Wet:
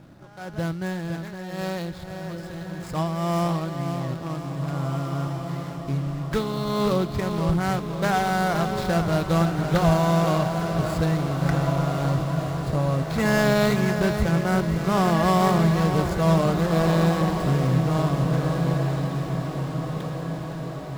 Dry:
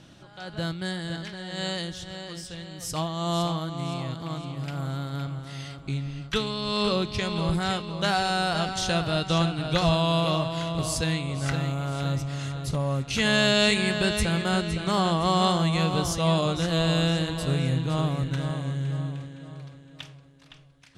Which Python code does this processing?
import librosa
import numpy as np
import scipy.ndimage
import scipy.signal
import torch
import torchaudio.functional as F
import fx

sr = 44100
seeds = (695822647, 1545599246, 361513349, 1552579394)

y = scipy.signal.medfilt(x, 15)
y = fx.echo_diffused(y, sr, ms=1865, feedback_pct=48, wet_db=-7)
y = y * librosa.db_to_amplitude(3.5)